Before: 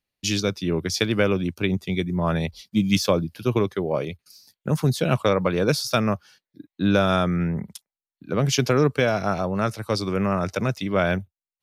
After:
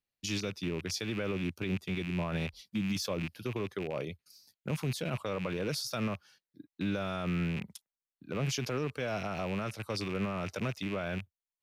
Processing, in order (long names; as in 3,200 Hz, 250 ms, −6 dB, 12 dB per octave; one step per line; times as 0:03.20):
loose part that buzzes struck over −30 dBFS, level −21 dBFS
brickwall limiter −16 dBFS, peak gain reduction 9 dB
level −8.5 dB